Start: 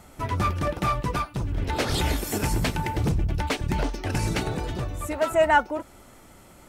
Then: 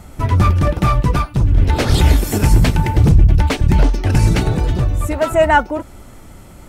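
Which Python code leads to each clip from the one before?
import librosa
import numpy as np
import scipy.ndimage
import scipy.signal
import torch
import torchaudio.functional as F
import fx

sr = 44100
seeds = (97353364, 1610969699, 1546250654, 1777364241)

y = fx.low_shelf(x, sr, hz=190.0, db=11.0)
y = y * 10.0 ** (6.0 / 20.0)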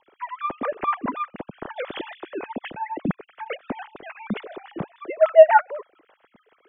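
y = fx.sine_speech(x, sr)
y = fx.rotary(y, sr, hz=7.0)
y = y * 10.0 ** (-8.5 / 20.0)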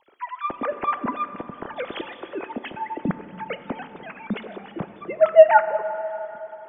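y = fx.rev_plate(x, sr, seeds[0], rt60_s=4.2, hf_ratio=0.5, predelay_ms=0, drr_db=10.5)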